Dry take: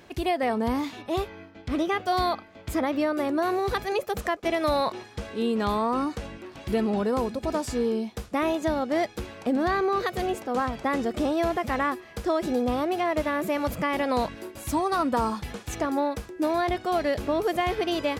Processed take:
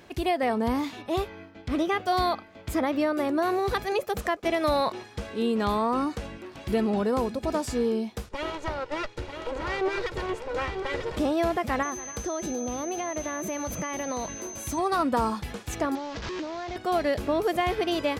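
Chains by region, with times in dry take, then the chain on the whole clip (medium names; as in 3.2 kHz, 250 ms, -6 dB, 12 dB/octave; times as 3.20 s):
8.29–11.17 s: comb filter that takes the minimum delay 2.1 ms + distance through air 70 m + delay 942 ms -7 dB
11.82–14.77 s: compression 3:1, threshold -29 dBFS + whistle 6.2 kHz -37 dBFS + delay 283 ms -16.5 dB
15.95–16.76 s: one-bit delta coder 32 kbps, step -27 dBFS + compression 5:1, threshold -31 dBFS + loudspeaker Doppler distortion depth 0.32 ms
whole clip: none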